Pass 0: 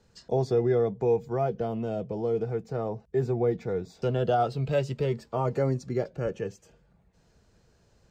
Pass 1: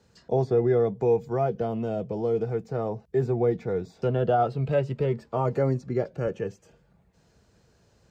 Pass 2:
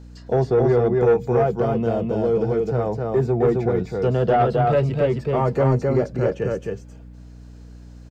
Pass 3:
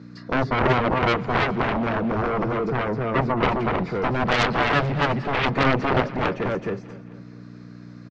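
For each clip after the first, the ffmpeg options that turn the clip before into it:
-filter_complex "[0:a]highpass=56,acrossover=split=2600[s0][s1];[s1]acompressor=threshold=0.001:ratio=6[s2];[s0][s2]amix=inputs=2:normalize=0,volume=1.26"
-af "aecho=1:1:263:0.708,asoftclip=type=tanh:threshold=0.158,aeval=exprs='val(0)+0.00501*(sin(2*PI*60*n/s)+sin(2*PI*2*60*n/s)/2+sin(2*PI*3*60*n/s)/3+sin(2*PI*4*60*n/s)/4+sin(2*PI*5*60*n/s)/5)':c=same,volume=2"
-af "highpass=f=130:w=0.5412,highpass=f=130:w=1.3066,equalizer=f=280:t=q:w=4:g=3,equalizer=f=480:t=q:w=4:g=-5,equalizer=f=830:t=q:w=4:g=-10,equalizer=f=1200:t=q:w=4:g=7,equalizer=f=2100:t=q:w=4:g=5,equalizer=f=3000:t=q:w=4:g=-10,lowpass=f=4700:w=0.5412,lowpass=f=4700:w=1.3066,aeval=exprs='0.398*(cos(1*acos(clip(val(0)/0.398,-1,1)))-cos(1*PI/2))+0.2*(cos(7*acos(clip(val(0)/0.398,-1,1)))-cos(7*PI/2))':c=same,aecho=1:1:216|432|648|864:0.126|0.0642|0.0327|0.0167,volume=0.75"

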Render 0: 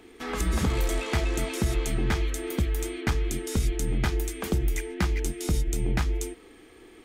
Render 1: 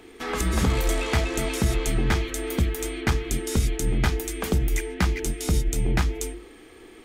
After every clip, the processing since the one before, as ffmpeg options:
-af "bandreject=f=50:t=h:w=6,bandreject=f=100:t=h:w=6,bandreject=f=150:t=h:w=6,bandreject=f=200:t=h:w=6,bandreject=f=250:t=h:w=6,bandreject=f=300:t=h:w=6,bandreject=f=350:t=h:w=6,volume=1.58"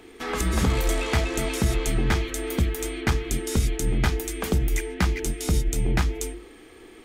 -af anull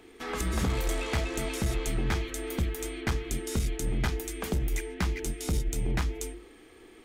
-af "aeval=exprs='clip(val(0),-1,0.119)':c=same,volume=0.531"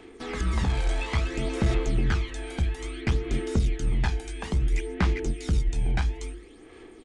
-filter_complex "[0:a]aresample=22050,aresample=44100,aphaser=in_gain=1:out_gain=1:delay=1.3:decay=0.49:speed=0.59:type=sinusoidal,acrossover=split=5400[s0][s1];[s1]acompressor=threshold=0.00316:ratio=4:attack=1:release=60[s2];[s0][s2]amix=inputs=2:normalize=0"

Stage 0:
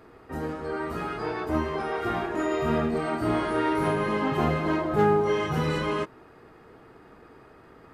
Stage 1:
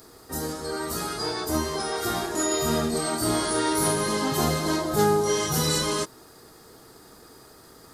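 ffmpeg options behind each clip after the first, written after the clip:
-af "aexciter=amount=13:drive=4:freq=3900"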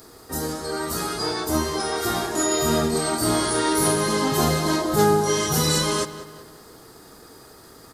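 -filter_complex "[0:a]asplit=2[s0][s1];[s1]adelay=192,lowpass=f=3900:p=1,volume=0.211,asplit=2[s2][s3];[s3]adelay=192,lowpass=f=3900:p=1,volume=0.47,asplit=2[s4][s5];[s5]adelay=192,lowpass=f=3900:p=1,volume=0.47,asplit=2[s6][s7];[s7]adelay=192,lowpass=f=3900:p=1,volume=0.47,asplit=2[s8][s9];[s9]adelay=192,lowpass=f=3900:p=1,volume=0.47[s10];[s0][s2][s4][s6][s8][s10]amix=inputs=6:normalize=0,volume=1.41"

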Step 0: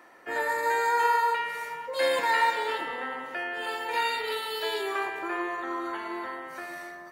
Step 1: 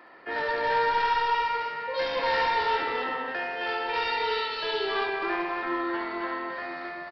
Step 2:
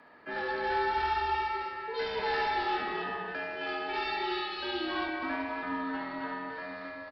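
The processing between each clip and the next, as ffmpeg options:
-af "aresample=11025,asoftclip=type=tanh:threshold=0.0501,aresample=44100,aecho=1:1:73|265:0.501|0.668,volume=1.26"
-af "afreqshift=-73,volume=0.562"

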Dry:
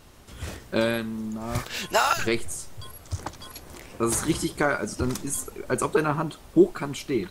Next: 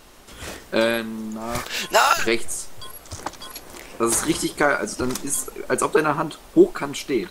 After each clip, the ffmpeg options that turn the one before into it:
-af "equalizer=f=93:t=o:w=1.8:g=-13,volume=1.88"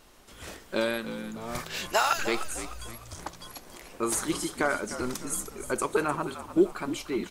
-filter_complex "[0:a]asplit=5[s0][s1][s2][s3][s4];[s1]adelay=302,afreqshift=-58,volume=0.251[s5];[s2]adelay=604,afreqshift=-116,volume=0.108[s6];[s3]adelay=906,afreqshift=-174,volume=0.0462[s7];[s4]adelay=1208,afreqshift=-232,volume=0.02[s8];[s0][s5][s6][s7][s8]amix=inputs=5:normalize=0,volume=0.398"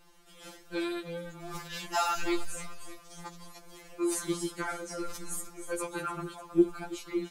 -af "afftfilt=real='re*2.83*eq(mod(b,8),0)':imag='im*2.83*eq(mod(b,8),0)':win_size=2048:overlap=0.75,volume=0.708"

